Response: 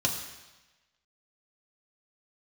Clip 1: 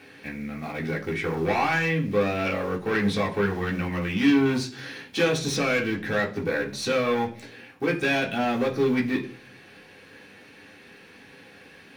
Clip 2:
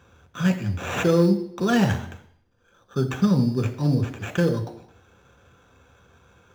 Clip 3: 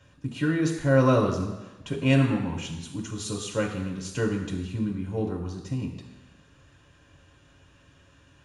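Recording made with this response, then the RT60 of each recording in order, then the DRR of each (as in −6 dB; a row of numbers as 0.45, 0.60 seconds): 3; 0.50, 0.65, 1.1 seconds; −2.5, 4.5, 0.5 decibels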